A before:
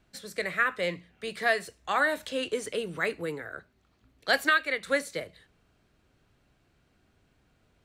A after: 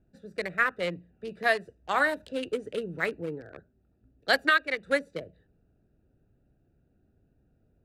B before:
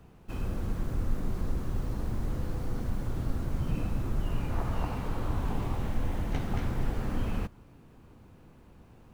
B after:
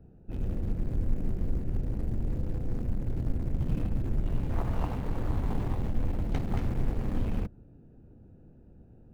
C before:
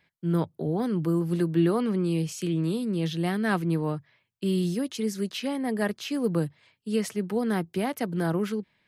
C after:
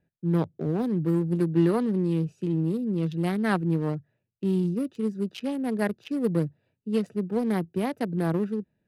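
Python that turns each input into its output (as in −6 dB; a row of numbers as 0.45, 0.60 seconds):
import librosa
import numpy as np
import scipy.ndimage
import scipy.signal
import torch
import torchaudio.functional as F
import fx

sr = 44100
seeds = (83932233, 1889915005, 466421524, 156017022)

y = fx.wiener(x, sr, points=41)
y = F.gain(torch.from_numpy(y), 1.5).numpy()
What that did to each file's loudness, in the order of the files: +0.5, +1.0, +0.5 LU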